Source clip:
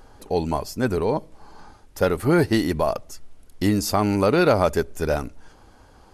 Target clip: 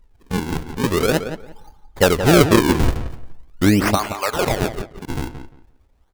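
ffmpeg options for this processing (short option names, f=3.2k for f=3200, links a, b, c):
-filter_complex "[0:a]asettb=1/sr,asplit=3[a][b][c];[a]atrim=end=3.954[d];[b]atrim=start=3.95:end=5.17,asetpts=PTS-STARTPTS,afade=t=in:d=0.004:c=qsin,afade=t=out:st=1.216:d=0.004:c=qsin,highpass=1.1k[e];[c]atrim=start=5.166[f];[d][e]acrossfade=d=0.004:c1=hsin:c2=qsin[g];[g][f]acrossfade=d=0.004:c1=qsin:c2=hsin,afftdn=nr=17:nf=-36,highshelf=f=11k:g=6.5,dynaudnorm=f=230:g=9:m=13.5dB,acrusher=samples=41:mix=1:aa=0.000001:lfo=1:lforange=65.6:lforate=0.43,asplit=2[h][i];[i]adelay=174,lowpass=f=2.8k:p=1,volume=-9.5dB,asplit=2[j][k];[k]adelay=174,lowpass=f=2.8k:p=1,volume=0.2,asplit=2[l][m];[m]adelay=174,lowpass=f=2.8k:p=1,volume=0.2[n];[h][j][l][n]amix=inputs=4:normalize=0,volume=-1dB"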